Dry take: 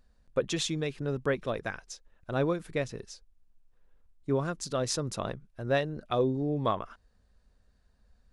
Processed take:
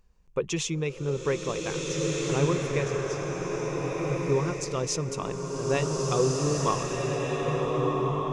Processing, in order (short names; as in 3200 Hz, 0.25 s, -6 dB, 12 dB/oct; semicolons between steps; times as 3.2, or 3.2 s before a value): ripple EQ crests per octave 0.75, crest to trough 9 dB; bloom reverb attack 1.68 s, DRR -2 dB